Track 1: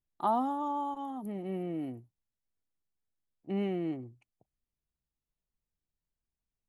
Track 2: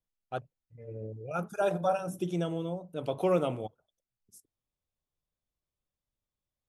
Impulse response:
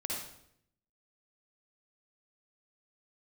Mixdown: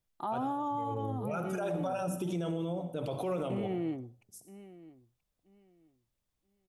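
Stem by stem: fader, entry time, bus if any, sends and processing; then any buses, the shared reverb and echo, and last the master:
0.0 dB, 0.00 s, no send, echo send −19 dB, no processing
+2.0 dB, 0.00 s, send −10 dB, no echo send, brickwall limiter −25 dBFS, peak gain reduction 9 dB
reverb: on, RT60 0.70 s, pre-delay 49 ms
echo: repeating echo 980 ms, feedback 21%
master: brickwall limiter −26 dBFS, peak gain reduction 9.5 dB

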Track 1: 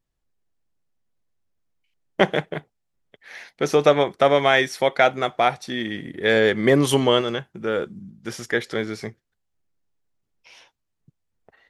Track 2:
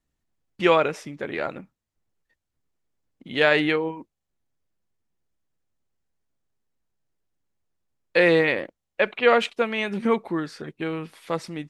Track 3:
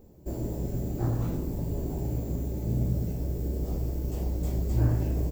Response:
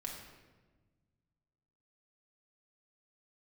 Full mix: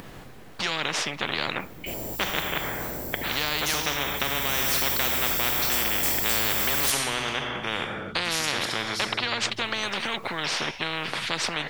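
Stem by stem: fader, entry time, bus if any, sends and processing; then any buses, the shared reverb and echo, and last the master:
−5.5 dB, 0.00 s, bus A, send −6.5 dB, high-shelf EQ 6,600 Hz −7 dB; upward compression, threshold −34 dBFS
+1.0 dB, 0.00 s, bus A, no send, no processing
−5.0 dB, 1.60 s, no bus, send −23.5 dB, notch filter 6,800 Hz, Q 8.2; automatic ducking −12 dB, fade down 1.85 s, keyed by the second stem
bus A: 0.0 dB, band-pass filter 110–3,100 Hz; downward compressor 2 to 1, threshold −22 dBFS, peak gain reduction 6 dB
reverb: on, RT60 1.3 s, pre-delay 4 ms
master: high-shelf EQ 5,800 Hz +10 dB; every bin compressed towards the loudest bin 10 to 1

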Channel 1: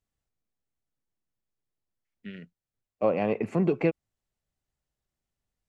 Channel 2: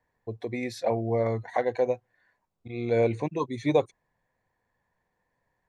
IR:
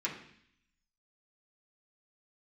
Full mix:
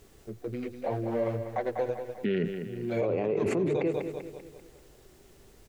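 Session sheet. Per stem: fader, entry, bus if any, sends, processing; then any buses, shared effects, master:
−12.0 dB, 0.00 s, no send, echo send −13 dB, parametric band 390 Hz +14.5 dB 0.63 octaves; envelope flattener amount 100%
+1.0 dB, 0.00 s, no send, echo send −9.5 dB, adaptive Wiener filter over 41 samples; multi-voice chorus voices 2, 0.69 Hz, delay 10 ms, depth 4.9 ms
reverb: not used
echo: repeating echo 195 ms, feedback 46%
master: brickwall limiter −20 dBFS, peak gain reduction 11 dB

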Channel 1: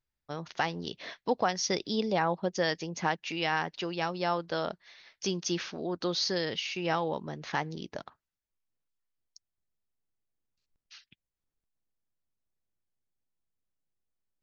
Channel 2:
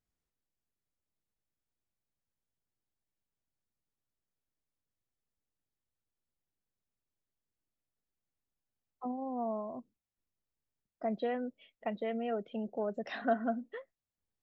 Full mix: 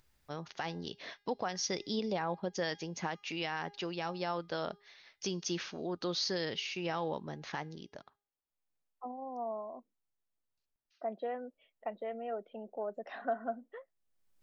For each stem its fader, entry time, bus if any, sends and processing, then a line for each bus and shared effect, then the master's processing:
+0.5 dB, 0.00 s, no send, upward compression, threshold −51 dBFS; tuned comb filter 410 Hz, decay 0.51 s, mix 40%; automatic ducking −20 dB, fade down 1.55 s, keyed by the second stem
−12.5 dB, 0.00 s, no send, high-pass filter 200 Hz; parametric band 810 Hz +11.5 dB 2.8 octaves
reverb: not used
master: brickwall limiter −24 dBFS, peak gain reduction 7 dB

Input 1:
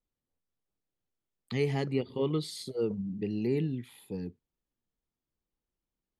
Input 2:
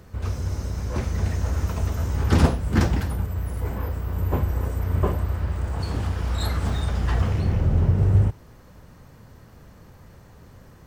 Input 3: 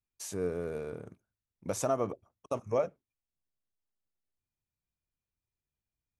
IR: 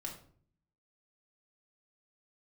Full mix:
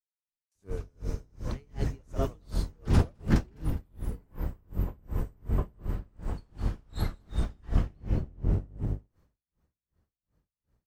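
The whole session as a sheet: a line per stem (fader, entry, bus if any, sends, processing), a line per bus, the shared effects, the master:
−4.0 dB, 0.00 s, no send, no echo send, no processing
−7.0 dB, 0.55 s, no send, echo send −8.5 dB, sub-octave generator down 1 octave, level +4 dB
−6.0 dB, 0.30 s, no send, echo send −15.5 dB, no processing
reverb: not used
echo: single-tap delay 207 ms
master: noise gate with hold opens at −38 dBFS; tremolo with a sine in dB 2.7 Hz, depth 34 dB

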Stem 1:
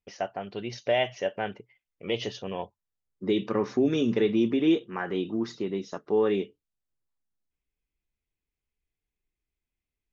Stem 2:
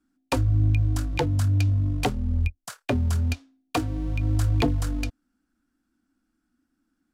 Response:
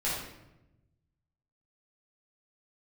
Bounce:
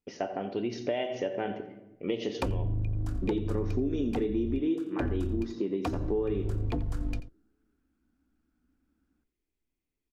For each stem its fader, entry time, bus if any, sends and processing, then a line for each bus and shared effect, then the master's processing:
−3.5 dB, 0.00 s, send −14 dB, echo send −16 dB, parametric band 290 Hz +12 dB 1.2 octaves
−1.5 dB, 2.10 s, no send, echo send −16.5 dB, sub-octave generator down 2 octaves, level −2 dB; high-shelf EQ 2,500 Hz −10.5 dB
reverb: on, RT60 0.95 s, pre-delay 7 ms
echo: single-tap delay 87 ms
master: downward compressor 6 to 1, threshold −27 dBFS, peak gain reduction 17.5 dB

